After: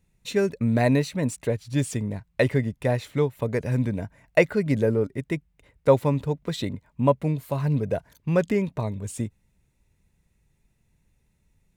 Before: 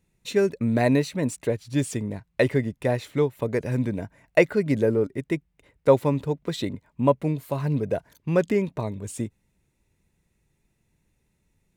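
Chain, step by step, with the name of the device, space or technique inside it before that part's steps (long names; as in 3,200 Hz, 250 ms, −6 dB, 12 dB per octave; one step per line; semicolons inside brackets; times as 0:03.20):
low shelf boost with a cut just above (low-shelf EQ 100 Hz +6.5 dB; parametric band 340 Hz −4 dB 0.59 octaves)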